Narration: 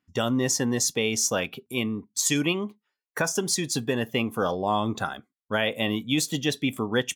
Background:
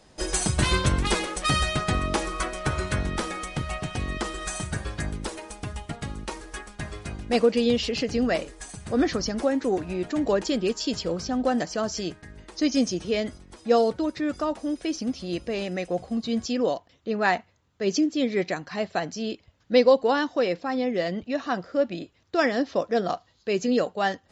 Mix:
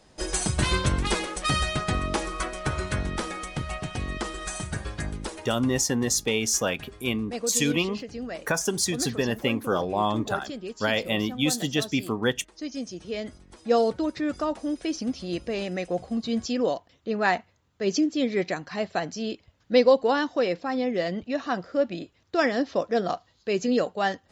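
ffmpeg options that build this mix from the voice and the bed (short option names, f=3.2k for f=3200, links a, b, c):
-filter_complex "[0:a]adelay=5300,volume=0dB[a];[1:a]volume=9dB,afade=t=out:st=5.26:d=0.65:silence=0.334965,afade=t=in:st=12.85:d=1.03:silence=0.298538[b];[a][b]amix=inputs=2:normalize=0"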